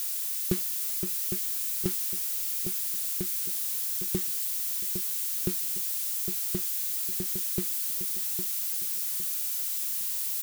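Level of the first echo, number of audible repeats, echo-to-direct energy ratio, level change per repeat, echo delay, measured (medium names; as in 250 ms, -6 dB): -8.0 dB, 3, -7.5 dB, -10.0 dB, 808 ms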